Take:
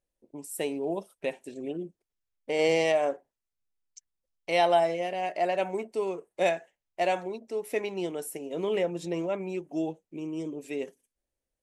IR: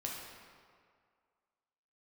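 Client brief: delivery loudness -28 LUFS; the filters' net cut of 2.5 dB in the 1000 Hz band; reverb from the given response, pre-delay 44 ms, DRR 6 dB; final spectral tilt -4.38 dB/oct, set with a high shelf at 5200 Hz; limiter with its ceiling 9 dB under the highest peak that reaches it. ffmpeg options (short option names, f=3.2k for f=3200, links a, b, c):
-filter_complex "[0:a]equalizer=f=1k:t=o:g=-4.5,highshelf=f=5.2k:g=4.5,alimiter=limit=-22.5dB:level=0:latency=1,asplit=2[a][b];[1:a]atrim=start_sample=2205,adelay=44[c];[b][c]afir=irnorm=-1:irlink=0,volume=-7dB[d];[a][d]amix=inputs=2:normalize=0,volume=5dB"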